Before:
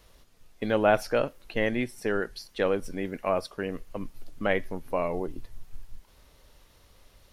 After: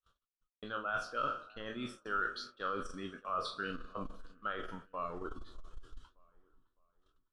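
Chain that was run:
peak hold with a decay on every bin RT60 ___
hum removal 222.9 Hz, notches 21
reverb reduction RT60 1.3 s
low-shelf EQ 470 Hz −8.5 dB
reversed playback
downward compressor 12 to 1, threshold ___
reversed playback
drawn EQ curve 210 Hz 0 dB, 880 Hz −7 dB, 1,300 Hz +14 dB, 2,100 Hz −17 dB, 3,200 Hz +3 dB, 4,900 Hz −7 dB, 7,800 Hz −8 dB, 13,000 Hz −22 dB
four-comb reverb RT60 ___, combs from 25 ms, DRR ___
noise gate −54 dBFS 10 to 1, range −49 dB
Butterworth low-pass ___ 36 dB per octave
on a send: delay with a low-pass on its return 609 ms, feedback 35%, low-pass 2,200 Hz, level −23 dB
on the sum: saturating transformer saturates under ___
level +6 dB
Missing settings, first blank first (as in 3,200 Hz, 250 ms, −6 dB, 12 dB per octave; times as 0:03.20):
0.69 s, −41 dBFS, 1.7 s, 15.5 dB, 11,000 Hz, 100 Hz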